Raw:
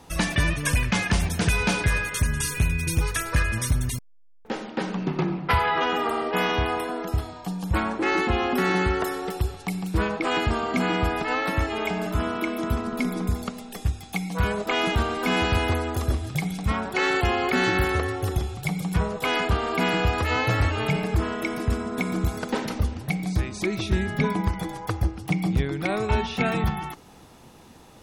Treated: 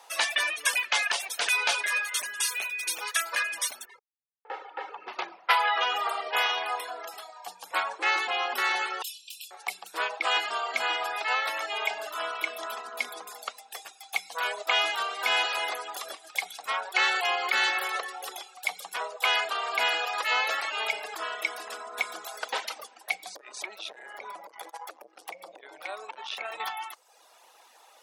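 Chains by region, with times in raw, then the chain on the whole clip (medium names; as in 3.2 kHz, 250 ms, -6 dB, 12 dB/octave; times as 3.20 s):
3.85–5.08 s: low-pass 2 kHz + comb 2.3 ms, depth 93% + compression 2:1, threshold -30 dBFS
9.02–9.51 s: brick-wall FIR high-pass 2.4 kHz + doubling 25 ms -4.5 dB
23.35–26.60 s: bass shelf 450 Hz +5.5 dB + compression 5:1, threshold -26 dBFS + transformer saturation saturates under 450 Hz
whole clip: dynamic bell 3.4 kHz, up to +5 dB, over -44 dBFS, Q 1.2; reverb removal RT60 0.87 s; high-pass 610 Hz 24 dB/octave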